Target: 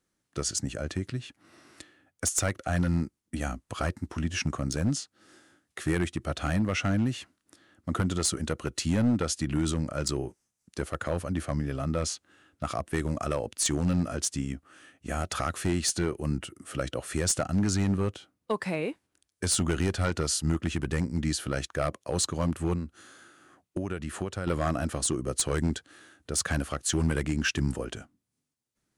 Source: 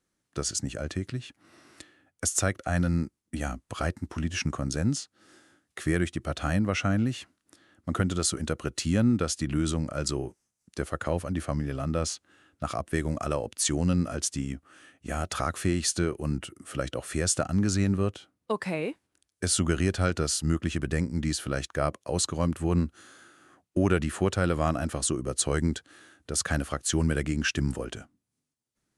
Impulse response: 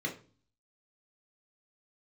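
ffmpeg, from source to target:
-filter_complex "[0:a]asettb=1/sr,asplit=3[s0][s1][s2];[s0]atrim=end=22.734[s3];[s1]atrim=start=22.73:end=24.47,asetpts=PTS-STARTPTS,afade=t=in:d=0.004:c=qsin,afade=t=out:st=1.736:d=0.004:c=qsin,acompressor=threshold=0.0398:ratio=10[s4];[s2]atrim=start=24.466[s5];[s3][s4]acrossfade=d=0.004:c1=hsin:c2=qsin[s6];[s6][s5]acrossfade=d=0.004:c1=qsin:c2=hsin,aeval=exprs='clip(val(0),-1,0.106)':c=same"

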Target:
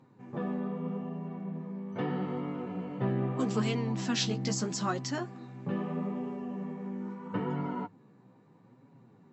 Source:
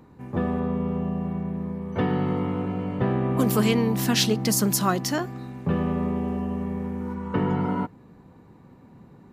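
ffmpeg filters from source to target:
-af "afftfilt=real='re*between(b*sr/4096,100,7900)':imag='im*between(b*sr/4096,100,7900)':win_size=4096:overlap=0.75,flanger=delay=7.1:depth=8.6:regen=19:speed=0.78:shape=sinusoidal,volume=0.562"

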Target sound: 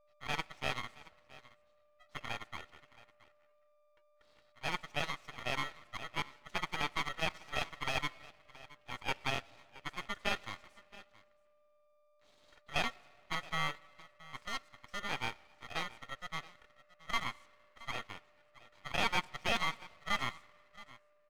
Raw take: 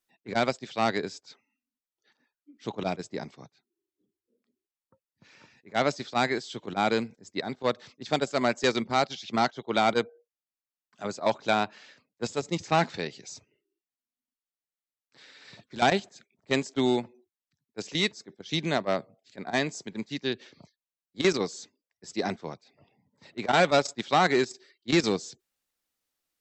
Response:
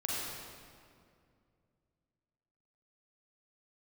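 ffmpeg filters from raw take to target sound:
-filter_complex "[0:a]lowpass=1800,aecho=1:1:834:0.106,aeval=exprs='val(0)*sin(2*PI*1300*n/s)':c=same,aeval=exprs='val(0)+0.001*sin(2*PI*480*n/s)':c=same,asetrate=54684,aresample=44100,asplit=2[s0][s1];[1:a]atrim=start_sample=2205[s2];[s1][s2]afir=irnorm=-1:irlink=0,volume=0.0501[s3];[s0][s3]amix=inputs=2:normalize=0,aeval=exprs='max(val(0),0)':c=same,volume=0.631"

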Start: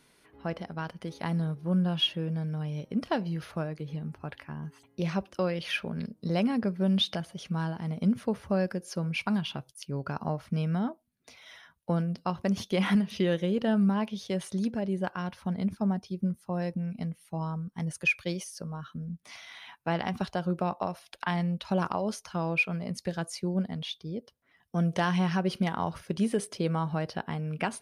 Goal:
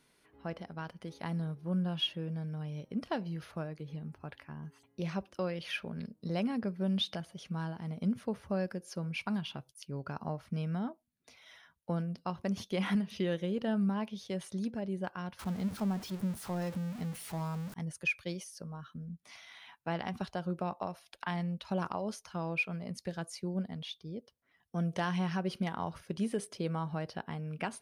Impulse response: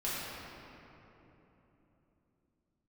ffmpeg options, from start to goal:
-filter_complex "[0:a]asettb=1/sr,asplit=3[s0][s1][s2];[s0]atrim=end=15.394[s3];[s1]atrim=start=15.39:end=17.74,asetpts=PTS-STARTPTS,afade=t=in:d=0.004:c=qsin,afade=t=out:st=2.346:d=0.004:c=qsin,aeval=exprs='val(0)+0.5*0.0178*sgn(val(0))':c=same[s4];[s2]atrim=start=17.736[s5];[s3][s4]acrossfade=d=0.004:c1=hsin:c2=qsin[s6];[s6][s5]acrossfade=d=0.004:c1=qsin:c2=hsin,volume=0.501"

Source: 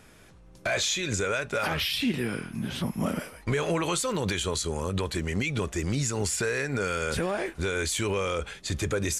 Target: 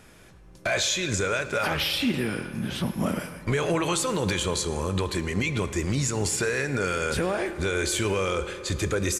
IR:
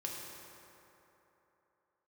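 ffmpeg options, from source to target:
-filter_complex "[0:a]asplit=2[s0][s1];[s1]adelay=110,highpass=300,lowpass=3400,asoftclip=type=hard:threshold=0.0501,volume=0.158[s2];[s0][s2]amix=inputs=2:normalize=0,asplit=2[s3][s4];[1:a]atrim=start_sample=2205[s5];[s4][s5]afir=irnorm=-1:irlink=0,volume=0.355[s6];[s3][s6]amix=inputs=2:normalize=0"

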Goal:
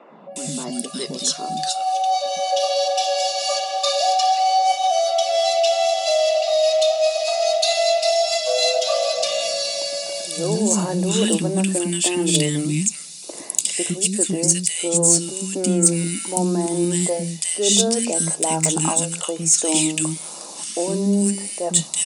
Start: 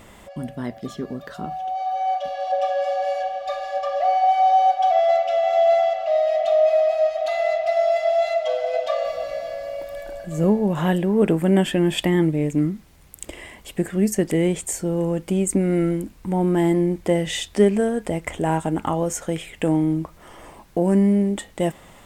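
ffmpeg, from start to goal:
-filter_complex "[0:a]acrossover=split=760|1300[s0][s1][s2];[s2]asoftclip=type=hard:threshold=0.106[s3];[s0][s1][s3]amix=inputs=3:normalize=0,aexciter=amount=9.9:drive=6.4:freq=2900,afftfilt=real='re*between(b*sr/4096,150,11000)':imag='im*between(b*sr/4096,150,11000)':win_size=4096:overlap=0.75,flanger=delay=0.1:depth=3.6:regen=-67:speed=0.22:shape=sinusoidal,areverse,acompressor=threshold=0.0794:ratio=8,areverse,acrossover=split=300|1500[s4][s5][s6];[s4]adelay=110[s7];[s6]adelay=360[s8];[s7][s5][s8]amix=inputs=3:normalize=0,acontrast=73,bandreject=f=3200:w=6.1,volume=1.19"

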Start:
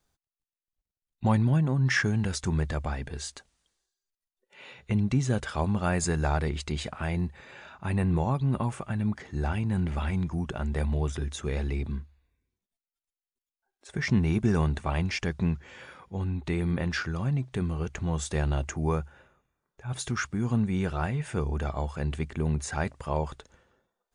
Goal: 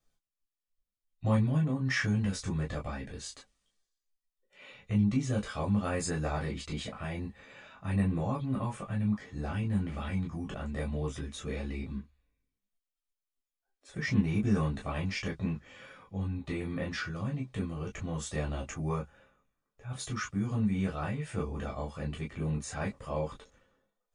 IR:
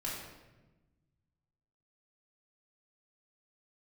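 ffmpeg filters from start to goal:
-filter_complex "[1:a]atrim=start_sample=2205,atrim=end_sample=3528,asetrate=79380,aresample=44100[s0];[0:a][s0]afir=irnorm=-1:irlink=0"

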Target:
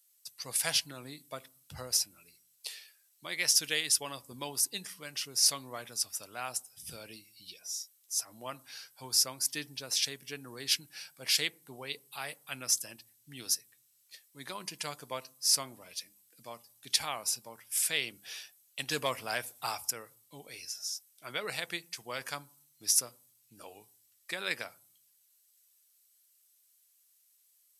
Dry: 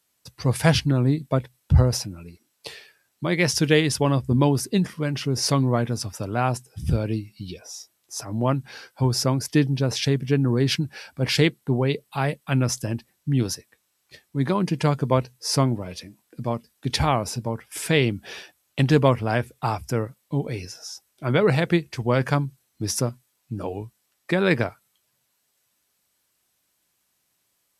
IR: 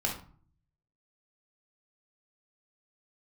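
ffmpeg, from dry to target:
-filter_complex "[0:a]asettb=1/sr,asplit=3[s0][s1][s2];[s0]atrim=end=18.914[s3];[s1]atrim=start=18.91:end=19.91,asetpts=PTS-STARTPTS,afade=t=in:d=0.004:c=qsin,afade=t=out:st=0.996:d=0.004:c=qsin,acontrast=32[s4];[s2]atrim=start=19.906[s5];[s3][s4]acrossfade=d=0.004:c1=hsin:c2=qsin[s6];[s6][s5]acrossfade=d=0.004:c1=qsin:c2=hsin,aderivative,asplit=2[s7][s8];[1:a]atrim=start_sample=2205,lowpass=1100[s9];[s8][s9]afir=irnorm=-1:irlink=0,volume=0.1[s10];[s7][s10]amix=inputs=2:normalize=0,volume=1.26"

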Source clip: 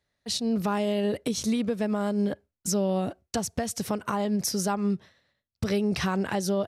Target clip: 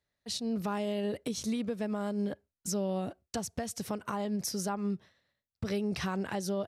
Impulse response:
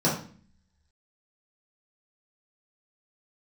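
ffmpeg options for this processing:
-filter_complex "[0:a]asettb=1/sr,asplit=3[s0][s1][s2];[s0]atrim=end=4.694[s3];[s1]atrim=start=4.69:end=5.65,asetpts=PTS-STARTPTS,afade=t=in:d=0.004:c=qsin,afade=t=out:st=0.956:d=0.004:c=qsin,acrossover=split=2700[s4][s5];[s5]acompressor=threshold=0.002:ratio=4:attack=1:release=60[s6];[s4][s6]amix=inputs=2:normalize=0[s7];[s2]atrim=start=5.646[s8];[s3][s7]acrossfade=d=0.004:c1=hsin:c2=qsin[s9];[s9][s8]acrossfade=d=0.004:c1=qsin:c2=hsin,volume=0.473"

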